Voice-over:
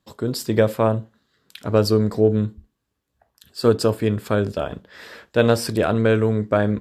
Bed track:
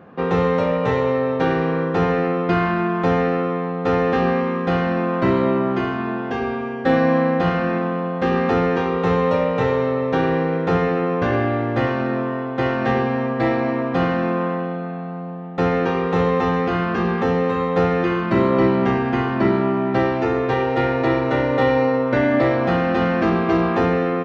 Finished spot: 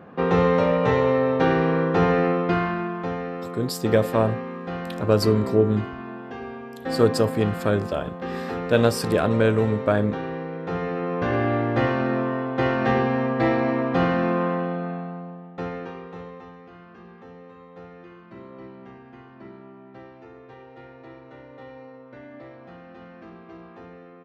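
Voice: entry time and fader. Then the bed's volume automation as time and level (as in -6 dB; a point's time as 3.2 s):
3.35 s, -2.0 dB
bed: 2.29 s -0.5 dB
3.19 s -11.5 dB
10.54 s -11.5 dB
11.54 s -1.5 dB
14.92 s -1.5 dB
16.58 s -25.5 dB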